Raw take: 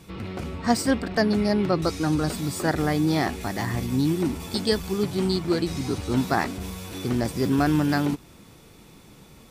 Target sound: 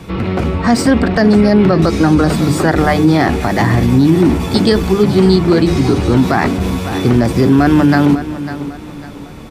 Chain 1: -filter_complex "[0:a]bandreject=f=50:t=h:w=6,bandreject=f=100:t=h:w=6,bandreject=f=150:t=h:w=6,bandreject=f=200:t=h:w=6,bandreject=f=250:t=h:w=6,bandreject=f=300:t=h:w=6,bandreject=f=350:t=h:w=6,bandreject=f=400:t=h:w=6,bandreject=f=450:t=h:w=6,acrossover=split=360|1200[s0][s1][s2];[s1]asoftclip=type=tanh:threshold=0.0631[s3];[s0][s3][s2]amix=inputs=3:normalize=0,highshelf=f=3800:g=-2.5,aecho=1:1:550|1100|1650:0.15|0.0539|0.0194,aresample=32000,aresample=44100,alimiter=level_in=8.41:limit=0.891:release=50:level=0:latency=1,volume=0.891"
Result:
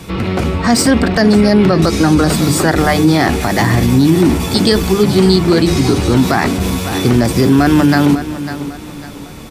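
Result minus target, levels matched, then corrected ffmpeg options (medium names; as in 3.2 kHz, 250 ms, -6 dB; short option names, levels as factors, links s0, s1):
8 kHz band +8.0 dB
-filter_complex "[0:a]bandreject=f=50:t=h:w=6,bandreject=f=100:t=h:w=6,bandreject=f=150:t=h:w=6,bandreject=f=200:t=h:w=6,bandreject=f=250:t=h:w=6,bandreject=f=300:t=h:w=6,bandreject=f=350:t=h:w=6,bandreject=f=400:t=h:w=6,bandreject=f=450:t=h:w=6,acrossover=split=360|1200[s0][s1][s2];[s1]asoftclip=type=tanh:threshold=0.0631[s3];[s0][s3][s2]amix=inputs=3:normalize=0,highshelf=f=3800:g=-12.5,aecho=1:1:550|1100|1650:0.15|0.0539|0.0194,aresample=32000,aresample=44100,alimiter=level_in=8.41:limit=0.891:release=50:level=0:latency=1,volume=0.891"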